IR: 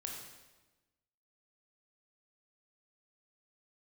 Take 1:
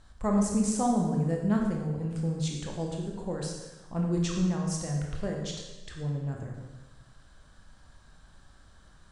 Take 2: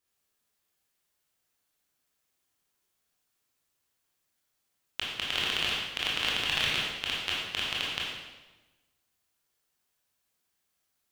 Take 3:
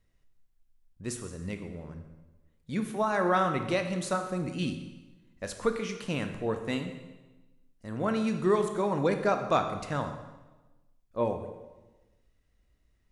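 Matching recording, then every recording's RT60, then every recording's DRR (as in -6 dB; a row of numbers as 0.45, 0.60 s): 1; 1.2, 1.2, 1.2 s; -0.5, -5.5, 6.0 dB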